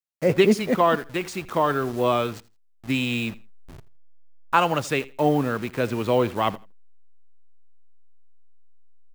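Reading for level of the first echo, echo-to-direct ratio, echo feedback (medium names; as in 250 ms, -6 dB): -20.5 dB, -20.5 dB, 21%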